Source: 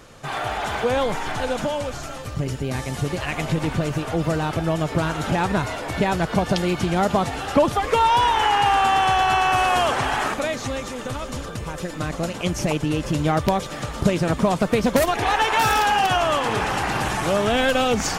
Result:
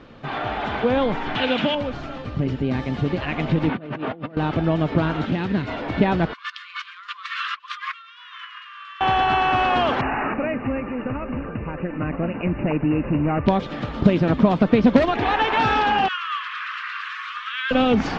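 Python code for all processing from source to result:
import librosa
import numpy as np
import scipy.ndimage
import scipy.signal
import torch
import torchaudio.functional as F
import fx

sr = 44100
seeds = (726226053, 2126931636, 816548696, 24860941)

y = fx.chain(x, sr, fx.highpass(hz=100.0, slope=12),
    fx.peak_eq(hz=2900.0, db=13.5, octaves=1.3), at=(1.35, 1.75))
y = fx.chain(y, sr, fx.bandpass_edges(low_hz=170.0, high_hz=3100.0),
    fx.over_compress(threshold_db=-31.0, ratio=-0.5), at=(3.69, 4.37))
y = fx.chain(y, sr, fx.highpass(hz=120.0, slope=6),
    fx.peak_eq(hz=860.0, db=-11.0, octaves=1.6),
    fx.doppler_dist(depth_ms=0.19), at=(5.25, 5.68))
y = fx.chain(y, sr, fx.over_compress(threshold_db=-29.0, ratio=-1.0),
    fx.brickwall_highpass(low_hz=1000.0), at=(6.33, 9.01))
y = fx.chain(y, sr, fx.overload_stage(gain_db=19.0),
    fx.brickwall_lowpass(high_hz=2900.0), at=(10.01, 13.46))
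y = fx.chain(y, sr, fx.steep_highpass(hz=1100.0, slope=96),
    fx.peak_eq(hz=13000.0, db=-5.5, octaves=2.6), at=(16.08, 17.71))
y = scipy.signal.sosfilt(scipy.signal.butter(4, 3900.0, 'lowpass', fs=sr, output='sos'), y)
y = fx.peak_eq(y, sr, hz=250.0, db=8.5, octaves=1.0)
y = y * librosa.db_to_amplitude(-1.0)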